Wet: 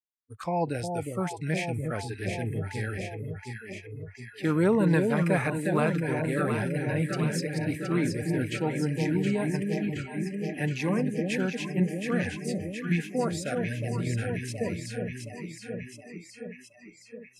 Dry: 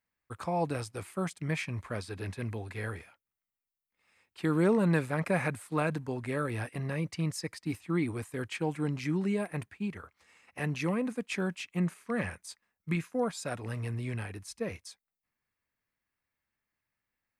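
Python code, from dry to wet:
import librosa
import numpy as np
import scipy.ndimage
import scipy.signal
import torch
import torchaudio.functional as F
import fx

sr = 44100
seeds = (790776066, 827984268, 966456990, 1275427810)

y = fx.echo_alternate(x, sr, ms=360, hz=810.0, feedback_pct=85, wet_db=-4)
y = fx.noise_reduce_blind(y, sr, reduce_db=26)
y = y * 10.0 ** (2.5 / 20.0)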